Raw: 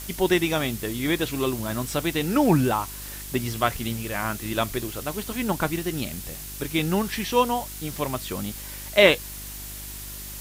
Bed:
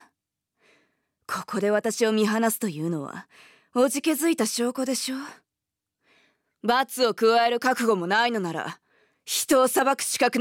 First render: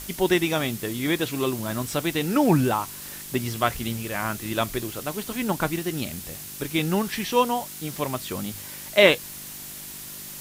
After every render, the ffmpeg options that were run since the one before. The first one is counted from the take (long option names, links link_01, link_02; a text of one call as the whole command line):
ffmpeg -i in.wav -af "bandreject=frequency=50:width_type=h:width=4,bandreject=frequency=100:width_type=h:width=4" out.wav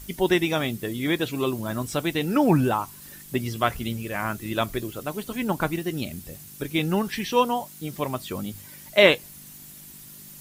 ffmpeg -i in.wav -af "afftdn=noise_reduction=10:noise_floor=-39" out.wav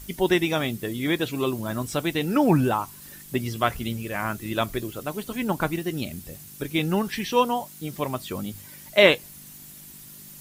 ffmpeg -i in.wav -af anull out.wav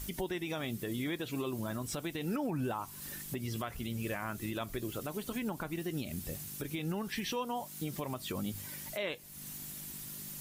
ffmpeg -i in.wav -af "acompressor=threshold=-33dB:ratio=3,alimiter=level_in=2.5dB:limit=-24dB:level=0:latency=1:release=73,volume=-2.5dB" out.wav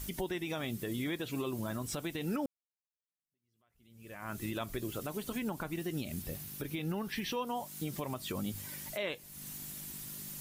ffmpeg -i in.wav -filter_complex "[0:a]asettb=1/sr,asplit=3[link_01][link_02][link_03];[link_01]atrim=end=6.224[link_04];[link_02]atrim=start=6.22:end=7.47,asetpts=PTS-STARTPTS,afade=type=in:duration=0.004:curve=qsin,afade=type=out:start_time=1.246:duration=0.004:curve=qsin,equalizer=frequency=7600:width=1.5:gain=-5.5[link_05];[link_03]atrim=start=7.466[link_06];[link_04][link_05]acrossfade=duration=0.004:curve1=hsin:curve2=qsin[link_07];[link_07][link_06]acrossfade=duration=0.004:curve1=qsin:curve2=hsin,asplit=2[link_08][link_09];[link_08]atrim=end=2.46,asetpts=PTS-STARTPTS,afade=type=out:start_time=2.456:duration=0.004:curve=hsin[link_10];[link_09]atrim=start=2.46,asetpts=PTS-STARTPTS,afade=type=in:duration=1.87:curve=exp[link_11];[link_10][link_11]concat=n=2:v=0:a=1" out.wav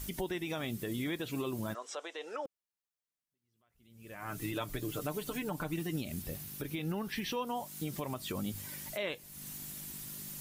ffmpeg -i in.wav -filter_complex "[0:a]asplit=3[link_01][link_02][link_03];[link_01]afade=type=out:start_time=1.73:duration=0.02[link_04];[link_02]highpass=frequency=480:width=0.5412,highpass=frequency=480:width=1.3066,equalizer=frequency=490:width_type=q:width=4:gain=5,equalizer=frequency=1100:width_type=q:width=4:gain=3,equalizer=frequency=2400:width_type=q:width=4:gain=-4,equalizer=frequency=4500:width_type=q:width=4:gain=-7,lowpass=frequency=6800:width=0.5412,lowpass=frequency=6800:width=1.3066,afade=type=in:start_time=1.73:duration=0.02,afade=type=out:start_time=2.45:duration=0.02[link_05];[link_03]afade=type=in:start_time=2.45:duration=0.02[link_06];[link_04][link_05][link_06]amix=inputs=3:normalize=0,asettb=1/sr,asplit=3[link_07][link_08][link_09];[link_07]atrim=end=4.174[link_10];[link_08]atrim=start=4.17:end=5.96,asetpts=PTS-STARTPTS,afade=type=in:duration=0.004:curve=qsin,afade=type=out:start_time=1.786:duration=0.004:curve=qsin,aecho=1:1:6.7:0.58,atrim=end_sample=78939[link_11];[link_09]atrim=start=5.956[link_12];[link_10][link_11]acrossfade=duration=0.004:curve1=hsin:curve2=qsin[link_13];[link_13][link_12]acrossfade=duration=0.004:curve1=qsin:curve2=hsin" out.wav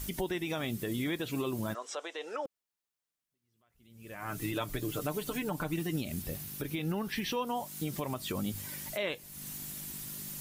ffmpeg -i in.wav -af "volume=2.5dB" out.wav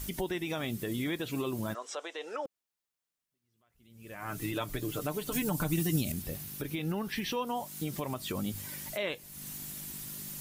ffmpeg -i in.wav -filter_complex "[0:a]asettb=1/sr,asplit=3[link_01][link_02][link_03];[link_01]atrim=end=5.324[link_04];[link_02]atrim=start=5.32:end=6.12,asetpts=PTS-STARTPTS,afade=type=in:duration=0.004:curve=qsin,afade=type=out:start_time=0.796:duration=0.004:curve=qsin,bass=frequency=250:gain=7,treble=frequency=4000:gain=10[link_05];[link_03]atrim=start=6.116[link_06];[link_04][link_05]acrossfade=duration=0.004:curve1=hsin:curve2=qsin[link_07];[link_07][link_06]acrossfade=duration=0.004:curve1=qsin:curve2=hsin" out.wav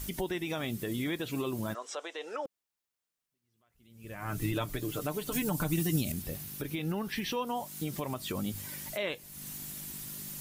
ffmpeg -i in.wav -filter_complex "[0:a]asettb=1/sr,asplit=3[link_01][link_02][link_03];[link_01]atrim=end=4.044[link_04];[link_02]atrim=start=4.04:end=4.66,asetpts=PTS-STARTPTS,afade=type=in:duration=0.004:curve=qsin,afade=type=out:start_time=0.616:duration=0.004:curve=qsin,lowshelf=frequency=150:gain=10[link_05];[link_03]atrim=start=4.656[link_06];[link_04][link_05]acrossfade=duration=0.004:curve1=hsin:curve2=qsin[link_07];[link_07][link_06]acrossfade=duration=0.004:curve1=qsin:curve2=hsin" out.wav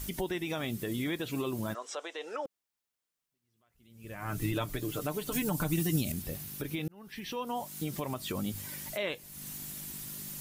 ffmpeg -i in.wav -filter_complex "[0:a]asplit=2[link_01][link_02];[link_01]atrim=end=6.88,asetpts=PTS-STARTPTS,afade=type=out:start_time=6.876:duration=0.004:curve=hsin[link_03];[link_02]atrim=start=6.88,asetpts=PTS-STARTPTS,afade=type=in:duration=0.73[link_04];[link_03][link_04]concat=n=2:v=0:a=1" out.wav